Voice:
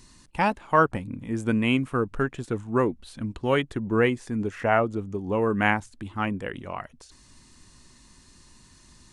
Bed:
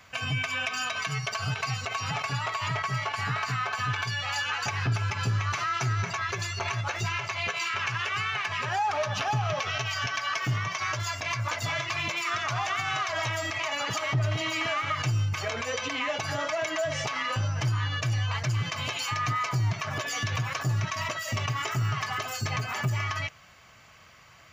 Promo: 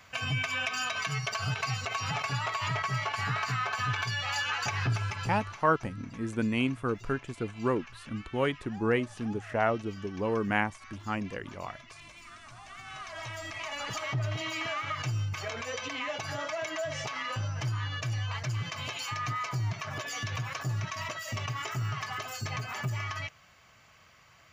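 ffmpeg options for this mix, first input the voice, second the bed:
ffmpeg -i stem1.wav -i stem2.wav -filter_complex "[0:a]adelay=4900,volume=-5.5dB[link_01];[1:a]volume=14dB,afade=type=out:start_time=4.85:duration=0.78:silence=0.112202,afade=type=in:start_time=12.63:duration=1.39:silence=0.16788[link_02];[link_01][link_02]amix=inputs=2:normalize=0" out.wav

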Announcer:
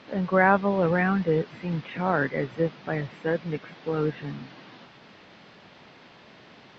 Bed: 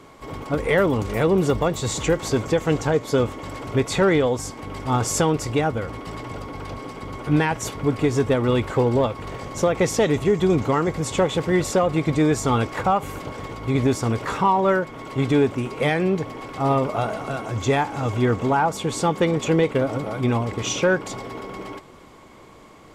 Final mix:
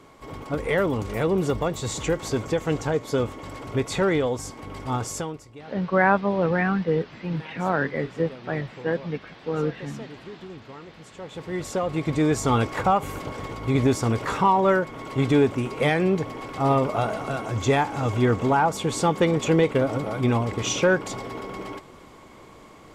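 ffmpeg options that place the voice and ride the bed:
ffmpeg -i stem1.wav -i stem2.wav -filter_complex "[0:a]adelay=5600,volume=0.5dB[link_01];[1:a]volume=17.5dB,afade=type=out:start_time=4.84:duration=0.62:silence=0.125893,afade=type=in:start_time=11.17:duration=1.4:silence=0.0841395[link_02];[link_01][link_02]amix=inputs=2:normalize=0" out.wav

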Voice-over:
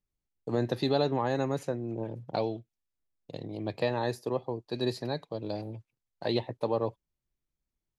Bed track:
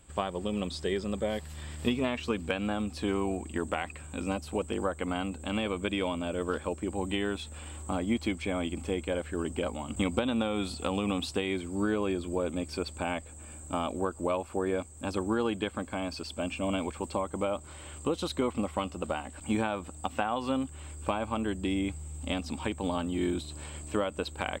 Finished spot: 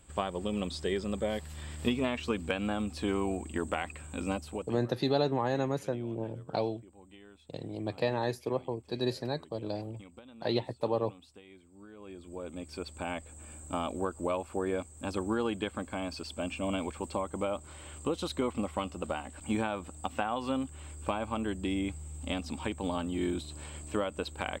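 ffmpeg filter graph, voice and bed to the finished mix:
ffmpeg -i stem1.wav -i stem2.wav -filter_complex "[0:a]adelay=4200,volume=-1dB[link_01];[1:a]volume=20dB,afade=type=out:start_time=4.34:duration=0.49:silence=0.0794328,afade=type=in:start_time=11.93:duration=1.47:silence=0.0891251[link_02];[link_01][link_02]amix=inputs=2:normalize=0" out.wav

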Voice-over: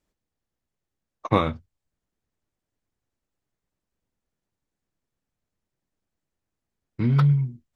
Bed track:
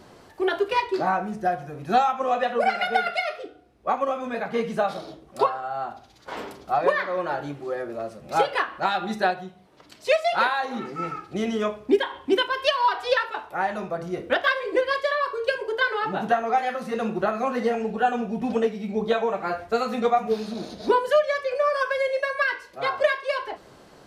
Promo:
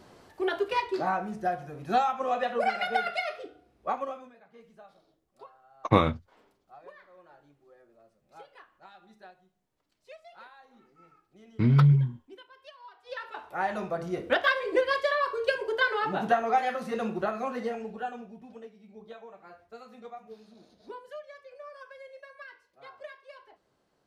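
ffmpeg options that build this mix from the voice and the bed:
ffmpeg -i stem1.wav -i stem2.wav -filter_complex "[0:a]adelay=4600,volume=-0.5dB[link_01];[1:a]volume=21dB,afade=type=out:start_time=3.84:duration=0.5:silence=0.0668344,afade=type=in:start_time=13.04:duration=0.72:silence=0.0501187,afade=type=out:start_time=16.64:duration=1.82:silence=0.0944061[link_02];[link_01][link_02]amix=inputs=2:normalize=0" out.wav

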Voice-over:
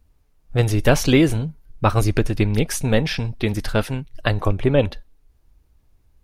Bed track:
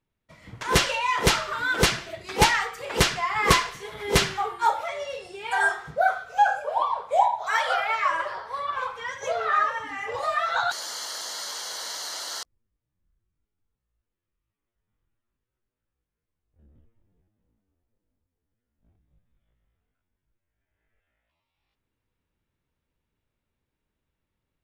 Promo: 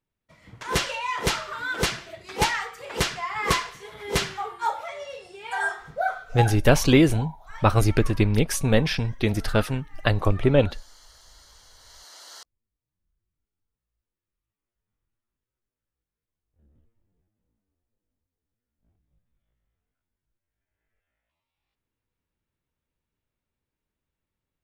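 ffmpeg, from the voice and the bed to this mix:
ffmpeg -i stem1.wav -i stem2.wav -filter_complex "[0:a]adelay=5800,volume=-1.5dB[link_01];[1:a]volume=11.5dB,afade=type=out:start_time=6.34:duration=0.26:silence=0.158489,afade=type=in:start_time=11.79:duration=1.41:silence=0.16788[link_02];[link_01][link_02]amix=inputs=2:normalize=0" out.wav

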